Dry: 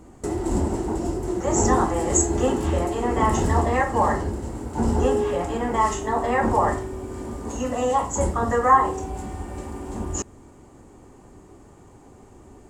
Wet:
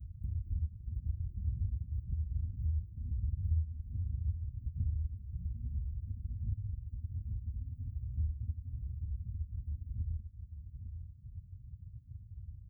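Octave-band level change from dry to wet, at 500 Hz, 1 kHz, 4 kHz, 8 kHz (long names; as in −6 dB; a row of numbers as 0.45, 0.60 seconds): below −40 dB, below −40 dB, below −40 dB, below −40 dB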